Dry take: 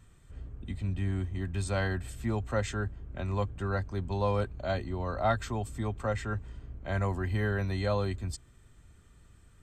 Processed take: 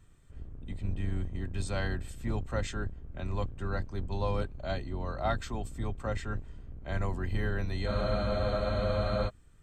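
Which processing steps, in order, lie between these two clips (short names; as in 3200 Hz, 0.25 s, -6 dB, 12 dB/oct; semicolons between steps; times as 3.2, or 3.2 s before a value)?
octaver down 2 oct, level +2 dB; dynamic EQ 4000 Hz, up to +4 dB, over -51 dBFS, Q 0.84; spectral freeze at 7.9, 1.38 s; gain -4 dB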